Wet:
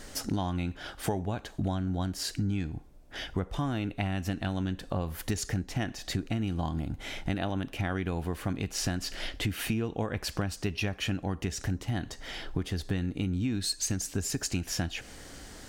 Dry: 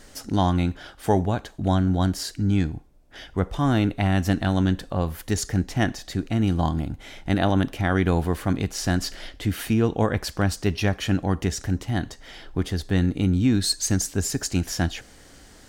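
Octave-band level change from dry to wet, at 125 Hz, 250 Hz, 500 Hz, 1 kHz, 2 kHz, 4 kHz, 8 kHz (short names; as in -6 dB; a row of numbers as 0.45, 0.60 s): -8.5, -9.5, -9.5, -10.0, -6.5, -4.5, -5.0 dB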